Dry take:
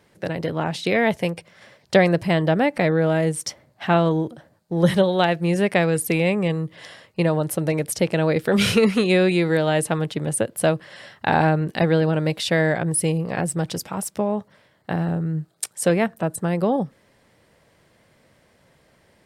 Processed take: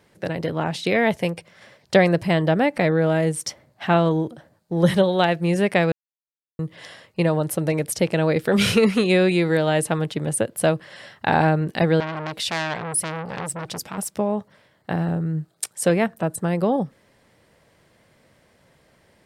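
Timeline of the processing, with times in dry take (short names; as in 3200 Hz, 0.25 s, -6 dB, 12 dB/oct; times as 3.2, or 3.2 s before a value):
5.92–6.59 mute
12–13.98 core saturation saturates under 2800 Hz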